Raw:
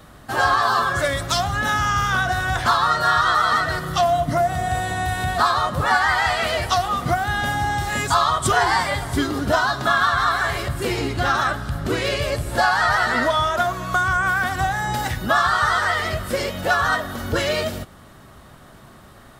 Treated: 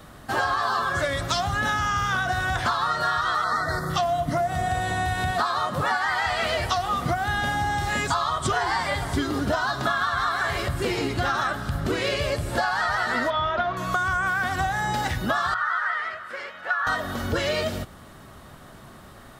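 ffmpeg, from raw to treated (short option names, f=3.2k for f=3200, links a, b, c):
-filter_complex "[0:a]asettb=1/sr,asplit=3[a][b][c];[a]atrim=end=3.444[d];[b]atrim=start=3.44:end=3.9,asetpts=PTS-STARTPTS,afade=t=in:d=0.004:c=qsin,afade=t=out:st=0.456:d=0.004:c=qsin,asuperstop=centerf=2800:order=4:qfactor=1.3[e];[c]atrim=start=3.896[f];[d][e]acrossfade=d=0.004:c1=hsin:c2=qsin[g];[g][f]acrossfade=d=0.004:c1=qsin:c2=hsin,asettb=1/sr,asplit=3[h][i][j];[h]atrim=end=5.314[k];[i]atrim=start=5.31:end=6.23,asetpts=PTS-STARTPTS,afade=t=in:d=0.004:c=qsin,afade=t=out:st=0.916:d=0.004:c=qsin,highpass=120[l];[j]atrim=start=6.226[m];[k][l]acrossfade=d=0.004:c1=hsin:c2=qsin[n];[n][m]acrossfade=d=0.004:c1=qsin:c2=hsin,asettb=1/sr,asplit=3[o][p][q];[o]atrim=end=13.304[r];[p]atrim=start=13.3:end=13.77,asetpts=PTS-STARTPTS,afade=t=in:d=0.004:c=qsin,afade=t=out:st=0.466:d=0.004:c=qsin,lowpass=f=3.9k:w=0.5412,lowpass=f=3.9k:w=1.3066[s];[q]atrim=start=13.766[t];[r][s]acrossfade=d=0.004:c1=hsin:c2=qsin[u];[u][t]acrossfade=d=0.004:c1=qsin:c2=hsin,asettb=1/sr,asplit=3[v][w][x];[v]atrim=end=15.544[y];[w]atrim=start=15.54:end=16.87,asetpts=PTS-STARTPTS,afade=t=in:d=0.004:c=qsin,afade=t=out:st=1.326:d=0.004:c=qsin,bandpass=f=1.5k:t=q:w=2.4[z];[x]atrim=start=16.866[aa];[y][z]acrossfade=d=0.004:c1=hsin:c2=qsin[ab];[ab][aa]acrossfade=d=0.004:c1=qsin:c2=hsin,acrossover=split=7400[ac][ad];[ad]acompressor=threshold=-45dB:ratio=4:attack=1:release=60[ae];[ac][ae]amix=inputs=2:normalize=0,bandreject=f=60:t=h:w=6,bandreject=f=120:t=h:w=6,acompressor=threshold=-21dB:ratio=6"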